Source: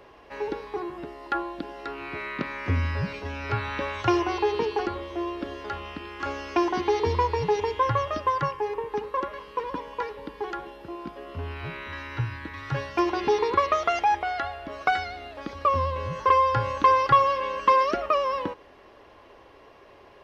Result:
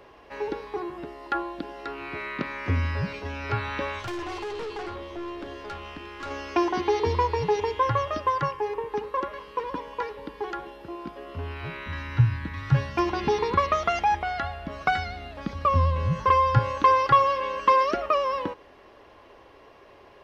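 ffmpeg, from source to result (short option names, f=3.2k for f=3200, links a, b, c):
-filter_complex "[0:a]asettb=1/sr,asplit=3[a][b][c];[a]atrim=end=3.994[d];[b]atrim=start=3.99:end=6.31,asetpts=PTS-STARTPTS,afade=t=in:d=0.004:c=qsin,afade=t=out:st=2.316:d=0.004:c=qsin,aeval=exprs='(tanh(35.5*val(0)+0.25)-tanh(0.25))/35.5':c=same[e];[c]atrim=start=6.306[f];[d][e]acrossfade=d=0.004:c1=hsin:c2=qsin[g];[g][f]acrossfade=d=0.004:c1=qsin:c2=hsin,asettb=1/sr,asplit=3[h][i][j];[h]atrim=end=11.864[k];[i]atrim=start=11.86:end=16.59,asetpts=PTS-STARTPTS,afade=t=in:d=0.004:c=qsin,afade=t=out:st=4.726:d=0.004:c=qsin,lowshelf=f=260:t=q:w=1.5:g=8[l];[j]atrim=start=16.586[m];[k][l]acrossfade=d=0.004:c1=hsin:c2=qsin[n];[n][m]acrossfade=d=0.004:c1=qsin:c2=hsin"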